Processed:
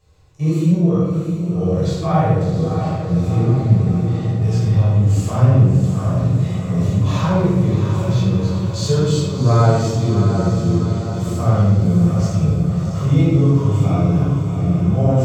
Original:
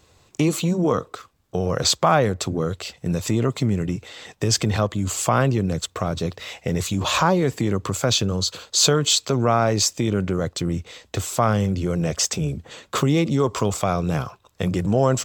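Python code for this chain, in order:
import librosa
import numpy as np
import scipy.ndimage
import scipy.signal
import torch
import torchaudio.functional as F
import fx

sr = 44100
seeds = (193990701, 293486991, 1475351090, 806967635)

y = fx.peak_eq(x, sr, hz=220.0, db=-4.0, octaves=1.5)
y = fx.hpss(y, sr, part='percussive', gain_db=-17)
y = fx.low_shelf(y, sr, hz=440.0, db=8.0)
y = fx.echo_diffused(y, sr, ms=708, feedback_pct=61, wet_db=-7)
y = fx.room_shoebox(y, sr, seeds[0], volume_m3=730.0, walls='mixed', distance_m=5.8)
y = y * 10.0 ** (-11.0 / 20.0)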